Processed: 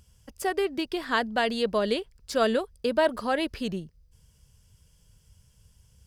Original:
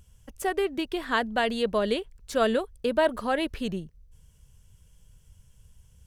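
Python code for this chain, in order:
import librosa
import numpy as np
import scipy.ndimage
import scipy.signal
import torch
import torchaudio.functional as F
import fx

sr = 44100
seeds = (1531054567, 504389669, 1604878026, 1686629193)

y = fx.highpass(x, sr, hz=56.0, slope=6)
y = fx.peak_eq(y, sr, hz=4900.0, db=10.5, octaves=0.23)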